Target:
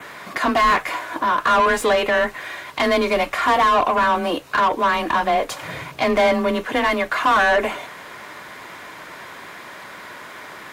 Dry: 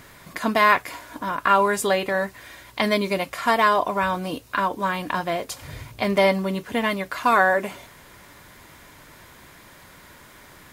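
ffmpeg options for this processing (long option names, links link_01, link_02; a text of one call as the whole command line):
ffmpeg -i in.wav -filter_complex "[0:a]asplit=2[link_01][link_02];[link_02]highpass=frequency=720:poles=1,volume=26dB,asoftclip=type=tanh:threshold=-3dB[link_03];[link_01][link_03]amix=inputs=2:normalize=0,lowpass=frequency=1800:poles=1,volume=-6dB,adynamicequalizer=threshold=0.00708:dfrequency=4900:dqfactor=3.7:tfrequency=4900:tqfactor=3.7:attack=5:release=100:ratio=0.375:range=2.5:mode=cutabove:tftype=bell,afreqshift=23,volume=-4.5dB" out.wav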